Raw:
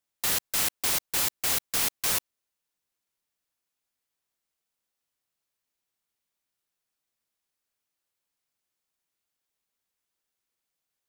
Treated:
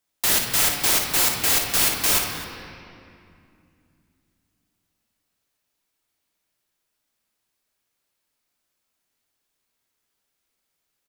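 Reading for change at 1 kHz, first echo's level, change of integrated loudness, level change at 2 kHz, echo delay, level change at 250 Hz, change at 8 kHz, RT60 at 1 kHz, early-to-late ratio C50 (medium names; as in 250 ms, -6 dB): +8.0 dB, -7.5 dB, +7.0 dB, +8.5 dB, 57 ms, +9.5 dB, +7.0 dB, 2.4 s, 2.0 dB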